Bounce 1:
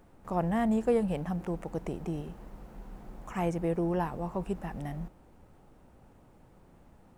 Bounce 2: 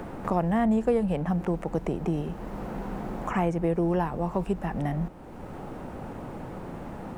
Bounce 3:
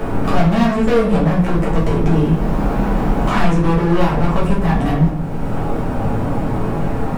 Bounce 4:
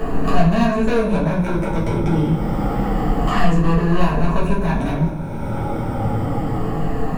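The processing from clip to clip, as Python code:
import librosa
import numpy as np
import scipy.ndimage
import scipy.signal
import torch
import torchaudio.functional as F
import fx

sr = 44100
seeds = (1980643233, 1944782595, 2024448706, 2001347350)

y1 = fx.high_shelf(x, sr, hz=5000.0, db=-6.0)
y1 = fx.band_squash(y1, sr, depth_pct=70)
y1 = y1 * 10.0 ** (5.0 / 20.0)
y2 = np.clip(y1, -10.0 ** (-29.5 / 20.0), 10.0 ** (-29.5 / 20.0))
y2 = fx.room_shoebox(y2, sr, seeds[0], volume_m3=65.0, walls='mixed', distance_m=1.5)
y2 = y2 * 10.0 ** (8.5 / 20.0)
y3 = fx.spec_ripple(y2, sr, per_octave=1.5, drift_hz=-0.28, depth_db=10)
y3 = y3 * 10.0 ** (-3.5 / 20.0)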